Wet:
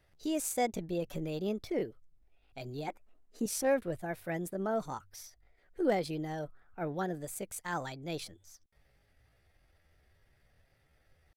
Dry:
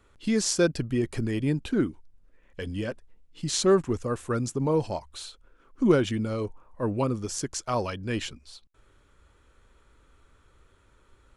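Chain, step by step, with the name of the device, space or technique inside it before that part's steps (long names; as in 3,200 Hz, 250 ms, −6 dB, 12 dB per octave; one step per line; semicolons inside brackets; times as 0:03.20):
chipmunk voice (pitch shifter +6 semitones)
0:02.88–0:03.46: octave-band graphic EQ 125/250/500/1,000/2,000/4,000/8,000 Hz −12/+9/+5/+6/+8/−6/+5 dB
level −8.5 dB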